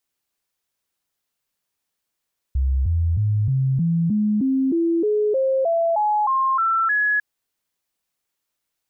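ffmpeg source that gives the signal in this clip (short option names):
-f lavfi -i "aevalsrc='0.15*clip(min(mod(t,0.31),0.31-mod(t,0.31))/0.005,0,1)*sin(2*PI*66.4*pow(2,floor(t/0.31)/3)*mod(t,0.31))':d=4.65:s=44100"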